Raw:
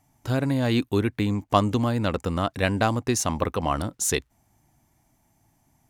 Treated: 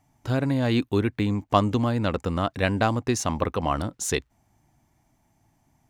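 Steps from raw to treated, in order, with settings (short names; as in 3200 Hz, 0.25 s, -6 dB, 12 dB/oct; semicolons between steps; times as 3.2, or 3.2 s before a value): bell 13000 Hz -8 dB 1.3 oct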